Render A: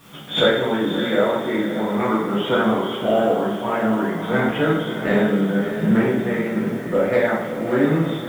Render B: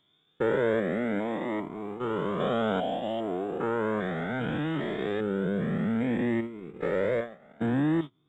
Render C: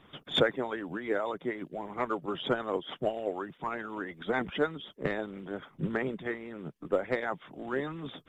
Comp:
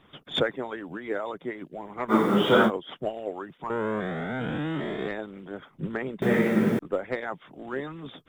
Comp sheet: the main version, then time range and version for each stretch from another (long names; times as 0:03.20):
C
0:02.11–0:02.68: punch in from A, crossfade 0.06 s
0:03.70–0:05.08: punch in from B
0:06.22–0:06.79: punch in from A